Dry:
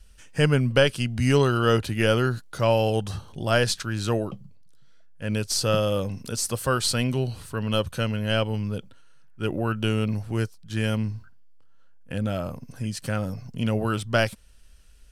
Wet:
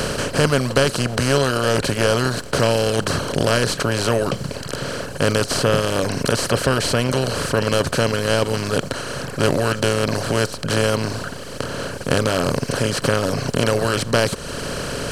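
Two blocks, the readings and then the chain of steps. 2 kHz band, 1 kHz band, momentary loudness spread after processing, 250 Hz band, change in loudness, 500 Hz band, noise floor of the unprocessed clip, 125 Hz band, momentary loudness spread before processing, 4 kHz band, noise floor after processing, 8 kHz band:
+7.0 dB, +7.0 dB, 9 LU, +4.5 dB, +5.0 dB, +6.5 dB, −49 dBFS, +3.0 dB, 11 LU, +7.0 dB, −32 dBFS, +7.5 dB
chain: compressor on every frequency bin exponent 0.2
low-shelf EQ 460 Hz +3.5 dB
reverb reduction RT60 1.2 s
level −3 dB

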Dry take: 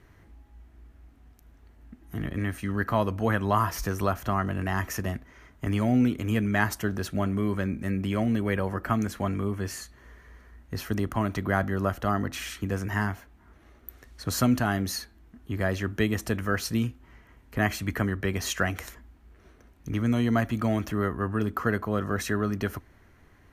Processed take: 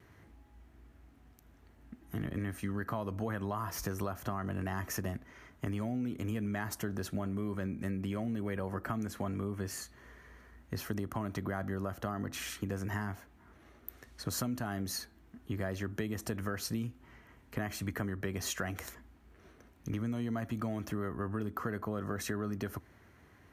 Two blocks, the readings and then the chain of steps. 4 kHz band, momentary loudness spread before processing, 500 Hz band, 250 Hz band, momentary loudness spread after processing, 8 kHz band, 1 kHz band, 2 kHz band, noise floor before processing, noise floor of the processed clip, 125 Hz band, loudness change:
−7.5 dB, 11 LU, −9.5 dB, −9.0 dB, 12 LU, −5.0 dB, −11.0 dB, −11.0 dB, −57 dBFS, −61 dBFS, −9.0 dB, −9.5 dB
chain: high-pass filter 76 Hz
dynamic equaliser 2,600 Hz, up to −4 dB, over −45 dBFS, Q 0.73
in parallel at +1 dB: brickwall limiter −20 dBFS, peak gain reduction 9.5 dB
on the sum: downward compressor, threshold −24 dBFS, peak gain reduction 10 dB
pitch vibrato 0.33 Hz 6.4 cents
level −8 dB

